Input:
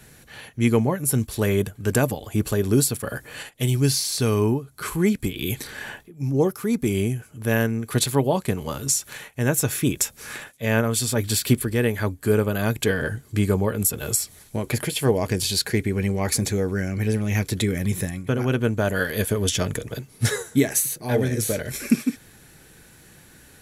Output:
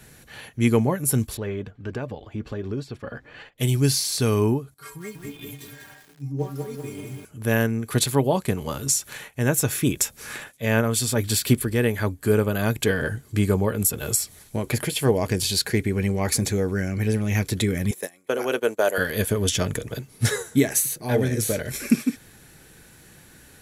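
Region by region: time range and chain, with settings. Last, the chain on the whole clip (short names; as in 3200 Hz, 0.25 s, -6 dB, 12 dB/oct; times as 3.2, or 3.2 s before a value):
1.37–3.58 compressor 2:1, threshold -22 dBFS + air absorption 220 m + flange 1.4 Hz, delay 1.6 ms, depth 2.8 ms, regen +62%
4.74–7.25 HPF 43 Hz + metallic resonator 140 Hz, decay 0.27 s, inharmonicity 0.008 + lo-fi delay 0.194 s, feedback 55%, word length 8-bit, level -4 dB
17.91–18.98 gate -26 dBFS, range -17 dB + resonant high-pass 480 Hz, resonance Q 1.6 + high shelf 5300 Hz +8 dB
whole clip: dry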